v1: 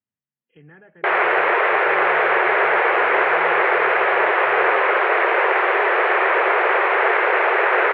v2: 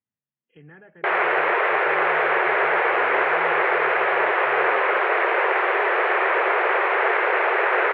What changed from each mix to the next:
background -3.0 dB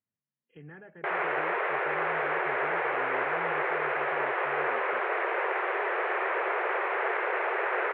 background -8.0 dB; master: add distance through air 170 m

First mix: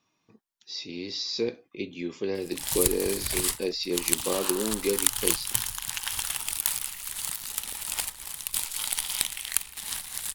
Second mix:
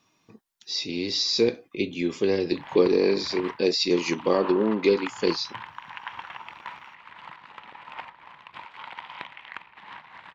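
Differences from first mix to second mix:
speech +7.0 dB; background: add cabinet simulation 180–2300 Hz, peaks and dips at 260 Hz -4 dB, 420 Hz -3 dB, 980 Hz +9 dB

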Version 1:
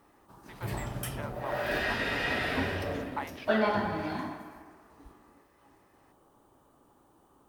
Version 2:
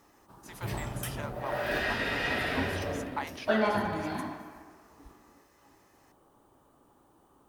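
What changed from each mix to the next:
speech: remove distance through air 200 m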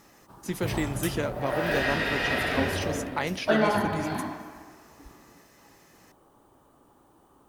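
speech: remove ladder high-pass 760 Hz, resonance 50%; background +3.5 dB

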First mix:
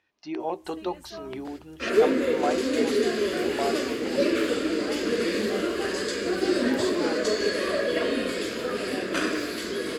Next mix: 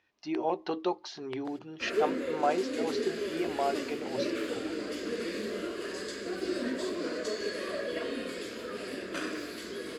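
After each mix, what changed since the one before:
first sound: muted; second sound -9.0 dB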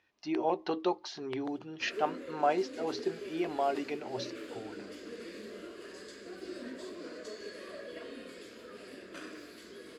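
background -10.0 dB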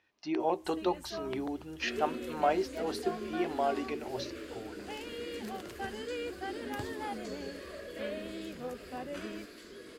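first sound: unmuted

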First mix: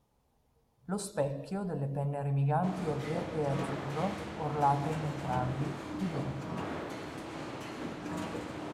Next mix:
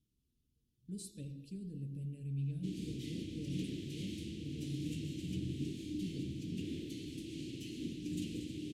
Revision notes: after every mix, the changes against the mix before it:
speech -7.0 dB; master: add elliptic band-stop 330–2900 Hz, stop band 80 dB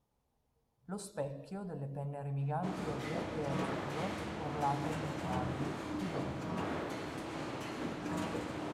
master: remove elliptic band-stop 330–2900 Hz, stop band 80 dB

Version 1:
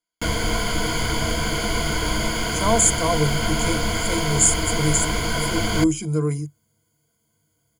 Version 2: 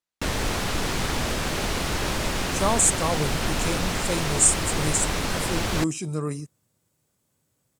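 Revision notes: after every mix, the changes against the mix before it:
master: remove rippled EQ curve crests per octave 1.8, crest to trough 16 dB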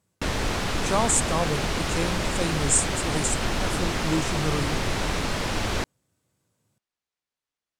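speech: entry -1.70 s; master: add treble shelf 11 kHz -11.5 dB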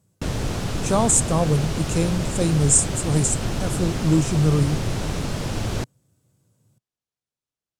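speech +5.5 dB; master: add graphic EQ 125/1000/2000/4000 Hz +8/-4/-6/-3 dB

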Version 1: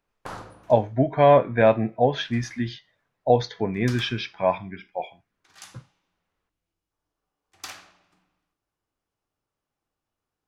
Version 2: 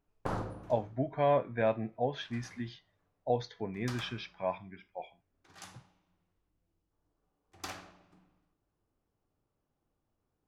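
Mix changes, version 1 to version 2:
speech -12.0 dB; background: add tilt shelf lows +7 dB, about 900 Hz

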